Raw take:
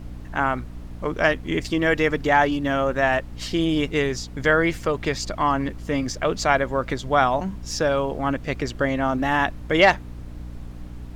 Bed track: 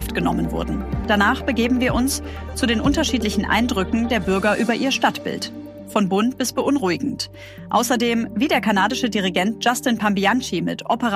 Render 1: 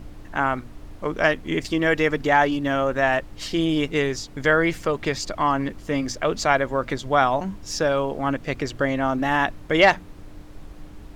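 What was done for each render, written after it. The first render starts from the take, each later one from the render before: hum notches 60/120/180/240 Hz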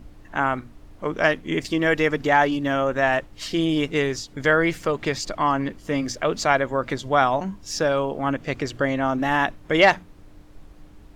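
noise print and reduce 6 dB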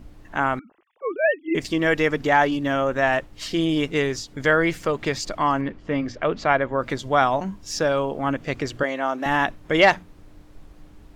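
0.59–1.55 s: formants replaced by sine waves; 5.61–6.80 s: low-pass 2.9 kHz; 8.83–9.26 s: high-pass 380 Hz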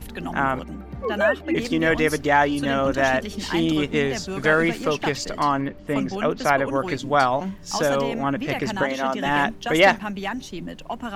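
add bed track -11 dB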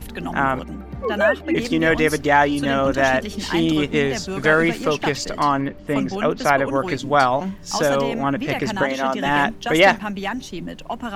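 trim +2.5 dB; peak limiter -2 dBFS, peak gain reduction 1.5 dB

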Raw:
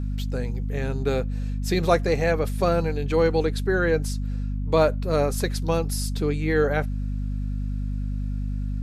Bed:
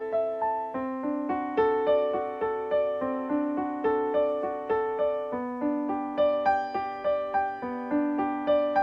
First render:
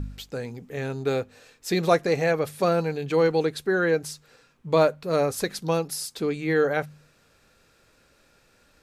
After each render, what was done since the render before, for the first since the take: de-hum 50 Hz, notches 5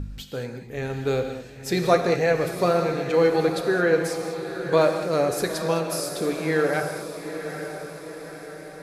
on a send: echo that smears into a reverb 909 ms, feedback 55%, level -9.5 dB; on the sum: gated-style reverb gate 240 ms flat, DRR 5.5 dB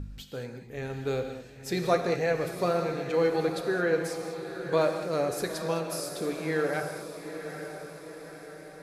trim -6 dB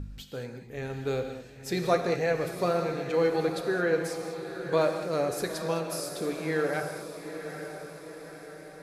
no audible change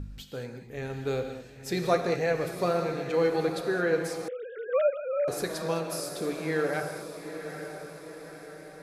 4.28–5.28 s: formants replaced by sine waves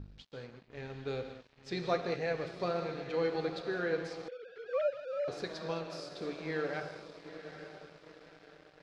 crossover distortion -47.5 dBFS; four-pole ladder low-pass 5.6 kHz, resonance 30%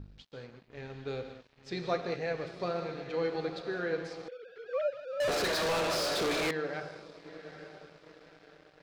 5.20–6.51 s: overdrive pedal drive 36 dB, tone 5.8 kHz, clips at -23.5 dBFS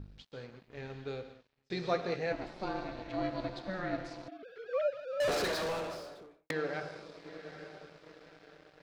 0.91–1.70 s: fade out; 2.32–4.43 s: ring modulator 190 Hz; 5.13–6.50 s: studio fade out

